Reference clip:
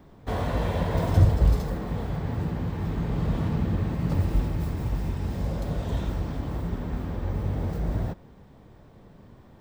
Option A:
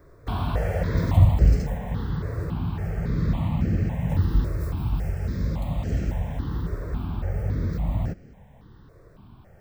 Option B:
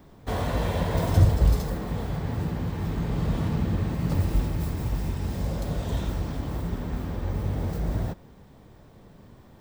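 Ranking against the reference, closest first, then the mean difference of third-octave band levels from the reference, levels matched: B, A; 2.0, 3.5 dB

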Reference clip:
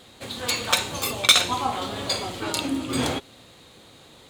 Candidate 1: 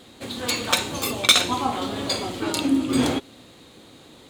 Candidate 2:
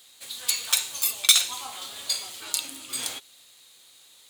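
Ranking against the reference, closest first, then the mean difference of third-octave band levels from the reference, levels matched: 1, 2; 1.5, 11.0 dB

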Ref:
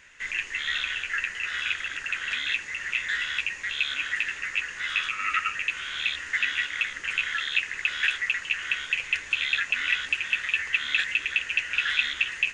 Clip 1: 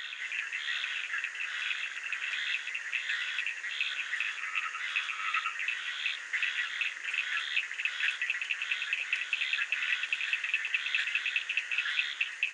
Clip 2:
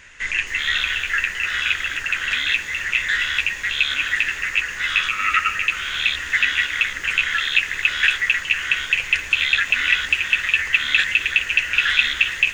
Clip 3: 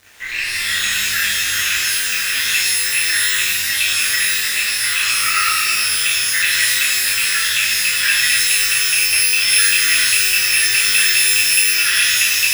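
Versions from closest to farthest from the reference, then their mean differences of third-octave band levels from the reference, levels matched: 2, 1, 3; 2.0, 4.0, 9.5 dB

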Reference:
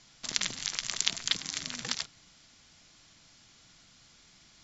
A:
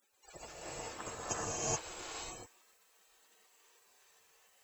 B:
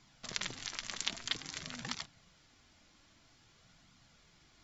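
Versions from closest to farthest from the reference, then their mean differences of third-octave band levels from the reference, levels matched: B, A; 3.5, 11.0 dB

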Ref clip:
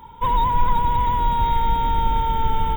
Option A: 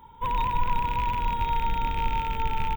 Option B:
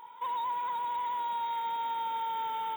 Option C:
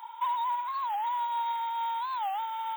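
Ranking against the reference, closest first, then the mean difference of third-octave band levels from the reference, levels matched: A, B, C; 2.5, 6.5, 11.0 dB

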